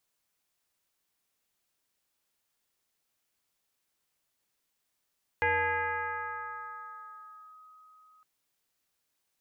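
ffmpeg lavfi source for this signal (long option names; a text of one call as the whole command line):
ffmpeg -f lavfi -i "aevalsrc='0.0708*pow(10,-3*t/4.71)*sin(2*PI*1260*t+2.3*clip(1-t/2.15,0,1)*sin(2*PI*0.31*1260*t))':duration=2.81:sample_rate=44100" out.wav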